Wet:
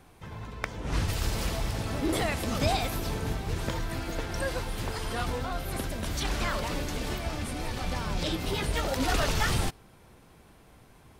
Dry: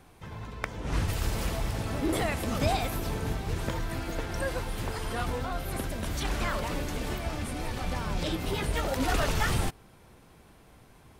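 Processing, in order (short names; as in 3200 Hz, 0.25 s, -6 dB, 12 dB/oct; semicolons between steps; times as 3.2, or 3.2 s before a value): dynamic EQ 4700 Hz, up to +4 dB, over -47 dBFS, Q 0.98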